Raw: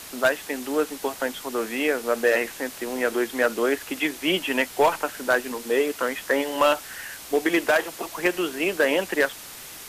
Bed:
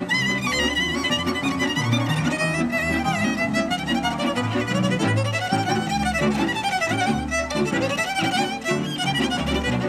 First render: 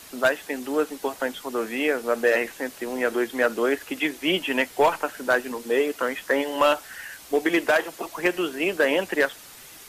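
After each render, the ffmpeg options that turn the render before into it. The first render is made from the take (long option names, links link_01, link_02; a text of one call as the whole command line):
ffmpeg -i in.wav -af "afftdn=noise_reduction=6:noise_floor=-41" out.wav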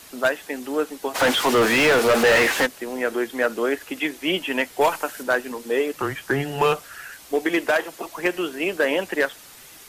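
ffmpeg -i in.wav -filter_complex "[0:a]asplit=3[link_01][link_02][link_03];[link_01]afade=type=out:start_time=1.14:duration=0.02[link_04];[link_02]asplit=2[link_05][link_06];[link_06]highpass=frequency=720:poles=1,volume=32dB,asoftclip=type=tanh:threshold=-9.5dB[link_07];[link_05][link_07]amix=inputs=2:normalize=0,lowpass=frequency=3200:poles=1,volume=-6dB,afade=type=in:start_time=1.14:duration=0.02,afade=type=out:start_time=2.65:duration=0.02[link_08];[link_03]afade=type=in:start_time=2.65:duration=0.02[link_09];[link_04][link_08][link_09]amix=inputs=3:normalize=0,asettb=1/sr,asplit=3[link_10][link_11][link_12];[link_10]atrim=end=4.814[link_13];[link_11]atrim=start=4.81:end=5.23,asetpts=PTS-STARTPTS,afade=type=in:duration=0.004:curve=qsin,afade=type=out:start_time=0.416:duration=0.004:curve=qsin,highshelf=frequency=4700:gain=7.5[link_14];[link_12]atrim=start=5.226[link_15];[link_13][link_14]acrossfade=duration=0.004:curve1=hsin:curve2=qsin[link_16];[link_16][link_15]acrossfade=duration=0.004:curve1=qsin:curve2=hsin,asettb=1/sr,asplit=3[link_17][link_18][link_19];[link_17]atrim=end=5.934[link_20];[link_18]atrim=start=5.93:end=7.12,asetpts=PTS-STARTPTS,afade=type=in:duration=0.004:curve=qsin,afade=type=out:start_time=1.186:duration=0.004:curve=qsin,afreqshift=-140[link_21];[link_19]atrim=start=7.116[link_22];[link_20][link_21]acrossfade=duration=0.004:curve1=hsin:curve2=qsin[link_23];[link_23][link_22]acrossfade=duration=0.004:curve1=qsin:curve2=hsin" out.wav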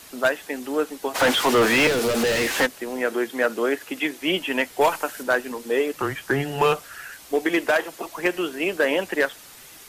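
ffmpeg -i in.wav -filter_complex "[0:a]asettb=1/sr,asplit=3[link_01][link_02][link_03];[link_01]atrim=end=1.874[link_04];[link_02]atrim=start=1.87:end=2.54,asetpts=PTS-STARTPTS,afade=type=in:duration=0.004:curve=qsin,afade=type=out:start_time=0.666:duration=0.004:curve=qsin,acrossover=split=430|3000[link_05][link_06][link_07];[link_06]acompressor=threshold=-27dB:ratio=6:attack=3.2:release=140:knee=2.83:detection=peak[link_08];[link_05][link_08][link_07]amix=inputs=3:normalize=0[link_09];[link_03]atrim=start=2.536[link_10];[link_04][link_09]acrossfade=duration=0.004:curve1=hsin:curve2=qsin[link_11];[link_11][link_10]acrossfade=duration=0.004:curve1=qsin:curve2=hsin,asettb=1/sr,asplit=3[link_12][link_13][link_14];[link_12]atrim=end=3.074[link_15];[link_13]atrim=start=3.07:end=4.22,asetpts=PTS-STARTPTS,afade=type=in:duration=0.004:curve=qsin,afade=type=out:start_time=1.146:duration=0.004:curve=qsin,highpass=99[link_16];[link_14]atrim=start=4.216[link_17];[link_15][link_16]acrossfade=duration=0.004:curve1=hsin:curve2=qsin[link_18];[link_18][link_17]acrossfade=duration=0.004:curve1=qsin:curve2=hsin" out.wav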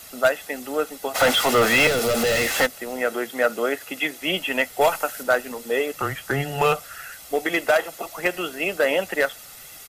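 ffmpeg -i in.wav -af "highshelf=frequency=11000:gain=6,aecho=1:1:1.5:0.46" out.wav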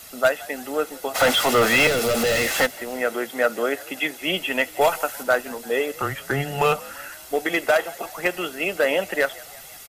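ffmpeg -i in.wav -filter_complex "[0:a]asplit=5[link_01][link_02][link_03][link_04][link_05];[link_02]adelay=171,afreqshift=59,volume=-22dB[link_06];[link_03]adelay=342,afreqshift=118,volume=-26.7dB[link_07];[link_04]adelay=513,afreqshift=177,volume=-31.5dB[link_08];[link_05]adelay=684,afreqshift=236,volume=-36.2dB[link_09];[link_01][link_06][link_07][link_08][link_09]amix=inputs=5:normalize=0" out.wav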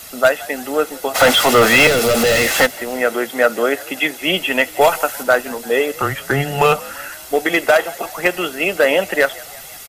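ffmpeg -i in.wav -af "volume=6.5dB,alimiter=limit=-2dB:level=0:latency=1" out.wav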